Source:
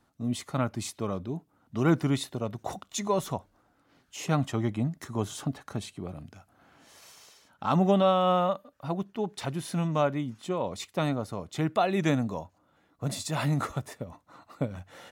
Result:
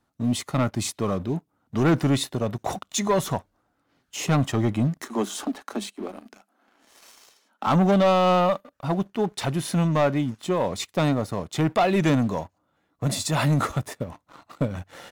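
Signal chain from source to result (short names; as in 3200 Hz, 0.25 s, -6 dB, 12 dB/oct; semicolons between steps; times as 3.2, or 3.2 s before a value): 5.02–7.67 Chebyshev high-pass 200 Hz, order 8; sample leveller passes 2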